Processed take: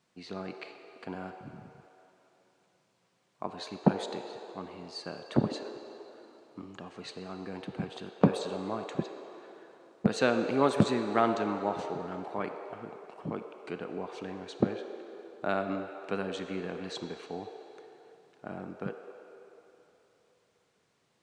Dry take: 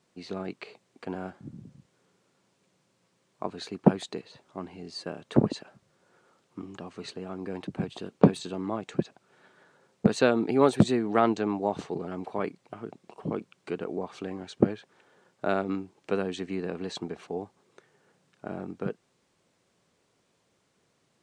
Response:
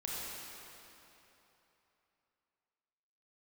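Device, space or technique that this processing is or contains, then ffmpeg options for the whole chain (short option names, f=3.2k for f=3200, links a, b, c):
filtered reverb send: -filter_complex "[0:a]asplit=2[a][b];[b]highpass=f=380:w=0.5412,highpass=f=380:w=1.3066,lowpass=6.2k[c];[1:a]atrim=start_sample=2205[d];[c][d]afir=irnorm=-1:irlink=0,volume=-5.5dB[e];[a][e]amix=inputs=2:normalize=0,volume=-4dB"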